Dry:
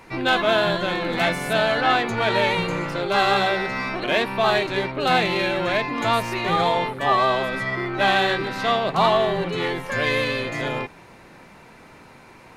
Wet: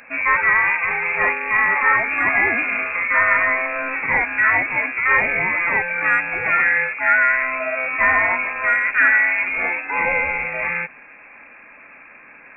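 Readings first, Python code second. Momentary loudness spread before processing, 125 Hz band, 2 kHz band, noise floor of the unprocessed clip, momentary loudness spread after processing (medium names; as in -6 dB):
7 LU, -11.0 dB, +9.5 dB, -47 dBFS, 7 LU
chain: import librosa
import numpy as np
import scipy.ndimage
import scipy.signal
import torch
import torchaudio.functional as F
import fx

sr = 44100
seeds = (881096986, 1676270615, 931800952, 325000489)

y = fx.freq_invert(x, sr, carrier_hz=2600)
y = fx.low_shelf(y, sr, hz=240.0, db=-10.0)
y = y * 10.0 ** (3.5 / 20.0)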